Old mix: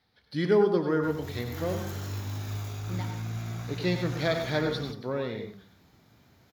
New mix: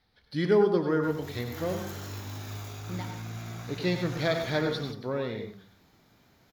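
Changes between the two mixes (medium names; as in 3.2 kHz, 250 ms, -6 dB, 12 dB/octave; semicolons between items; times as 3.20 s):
background: add high-pass 180 Hz 6 dB/octave; master: remove high-pass 70 Hz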